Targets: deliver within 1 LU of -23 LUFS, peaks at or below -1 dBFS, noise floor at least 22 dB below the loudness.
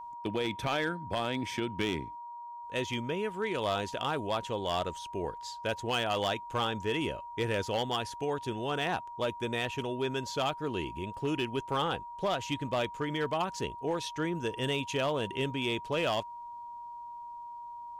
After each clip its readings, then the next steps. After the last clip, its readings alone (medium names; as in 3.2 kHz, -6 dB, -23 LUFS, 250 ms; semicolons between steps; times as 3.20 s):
clipped samples 0.9%; clipping level -23.5 dBFS; steady tone 950 Hz; tone level -41 dBFS; loudness -33.0 LUFS; peak level -23.5 dBFS; loudness target -23.0 LUFS
-> clip repair -23.5 dBFS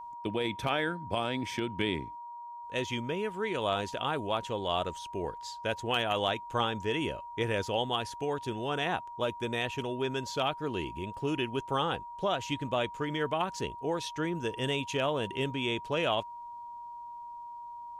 clipped samples 0.0%; steady tone 950 Hz; tone level -41 dBFS
-> band-stop 950 Hz, Q 30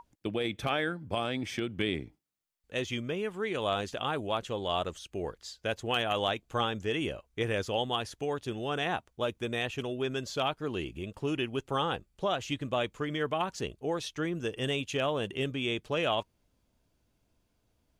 steady tone not found; loudness -33.0 LUFS; peak level -14.5 dBFS; loudness target -23.0 LUFS
-> trim +10 dB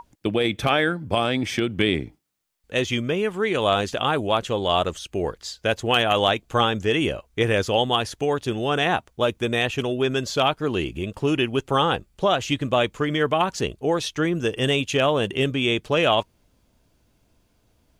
loudness -23.0 LUFS; peak level -4.5 dBFS; noise floor -65 dBFS